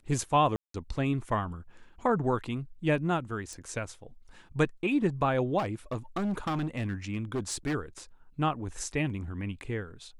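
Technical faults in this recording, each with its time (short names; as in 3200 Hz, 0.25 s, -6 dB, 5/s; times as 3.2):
0.56–0.74 gap 0.183 s
3.53 pop
5.58–7.75 clipped -27 dBFS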